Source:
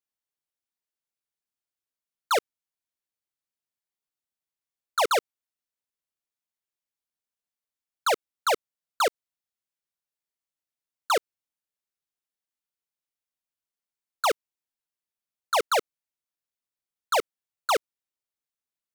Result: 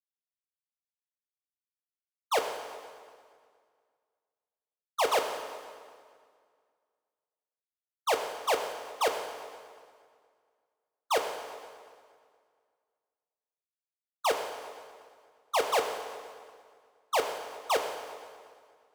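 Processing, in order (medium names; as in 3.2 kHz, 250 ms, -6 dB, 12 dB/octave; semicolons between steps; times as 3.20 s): gate -23 dBFS, range -45 dB; on a send: reverberation RT60 2.0 s, pre-delay 5 ms, DRR 3 dB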